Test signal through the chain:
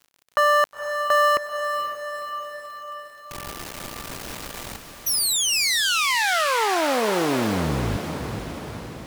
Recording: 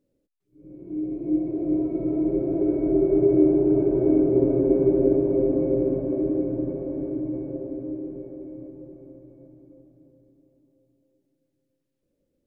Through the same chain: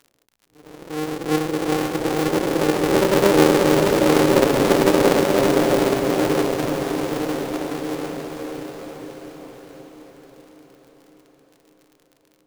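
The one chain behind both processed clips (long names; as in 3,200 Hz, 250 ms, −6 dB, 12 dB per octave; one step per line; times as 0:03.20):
sub-harmonics by changed cycles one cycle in 2, muted
feedback delay with all-pass diffusion 489 ms, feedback 60%, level −7.5 dB
surface crackle 52 per second −46 dBFS
low-shelf EQ 200 Hz −5 dB
level +6.5 dB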